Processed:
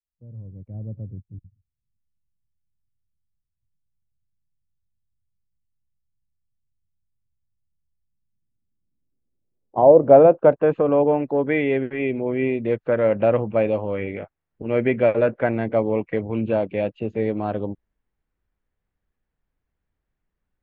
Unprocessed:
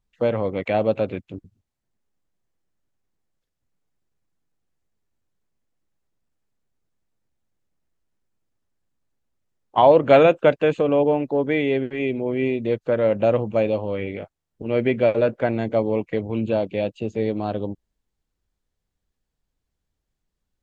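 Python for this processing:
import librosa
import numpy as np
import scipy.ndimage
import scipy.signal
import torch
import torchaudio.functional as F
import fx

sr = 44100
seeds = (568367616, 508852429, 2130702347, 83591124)

y = fx.fade_in_head(x, sr, length_s=0.9)
y = fx.filter_sweep_lowpass(y, sr, from_hz=110.0, to_hz=2000.0, start_s=7.93, end_s=11.33, q=1.3)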